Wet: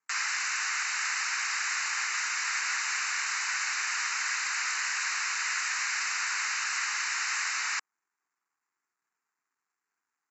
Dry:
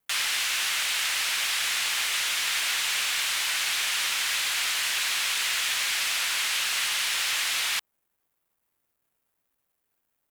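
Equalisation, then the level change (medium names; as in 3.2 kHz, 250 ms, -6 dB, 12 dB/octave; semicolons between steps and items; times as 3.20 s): high-pass 480 Hz 12 dB/octave; brick-wall FIR low-pass 7.7 kHz; static phaser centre 1.4 kHz, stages 4; +2.0 dB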